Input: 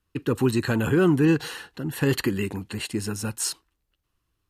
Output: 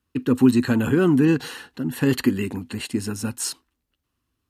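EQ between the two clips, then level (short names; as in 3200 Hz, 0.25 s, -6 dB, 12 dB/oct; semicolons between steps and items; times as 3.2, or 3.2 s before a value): HPF 46 Hz; bell 250 Hz +13 dB 0.23 oct; 0.0 dB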